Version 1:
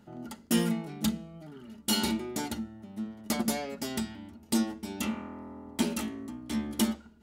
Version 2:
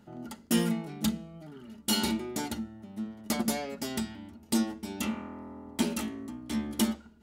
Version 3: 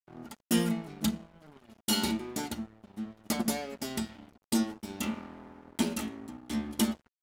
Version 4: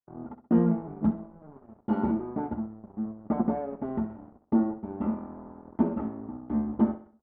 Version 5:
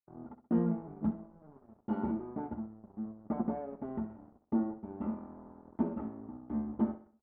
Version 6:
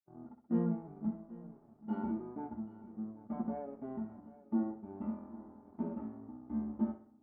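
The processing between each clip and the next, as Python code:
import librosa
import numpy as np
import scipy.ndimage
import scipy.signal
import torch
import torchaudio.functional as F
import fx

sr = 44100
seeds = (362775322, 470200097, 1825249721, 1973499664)

y1 = x
y2 = np.sign(y1) * np.maximum(np.abs(y1) - 10.0 ** (-47.0 / 20.0), 0.0)
y3 = scipy.signal.sosfilt(scipy.signal.butter(4, 1100.0, 'lowpass', fs=sr, output='sos'), y2)
y3 = fx.echo_feedback(y3, sr, ms=64, feedback_pct=41, wet_db=-12)
y3 = F.gain(torch.from_numpy(y3), 5.0).numpy()
y4 = fx.air_absorb(y3, sr, metres=86.0)
y4 = F.gain(torch.from_numpy(y4), -7.0).numpy()
y5 = fx.hpss(y4, sr, part='percussive', gain_db=-13)
y5 = fx.echo_feedback(y5, sr, ms=781, feedback_pct=53, wet_db=-18)
y5 = F.gain(torch.from_numpy(y5), -1.5).numpy()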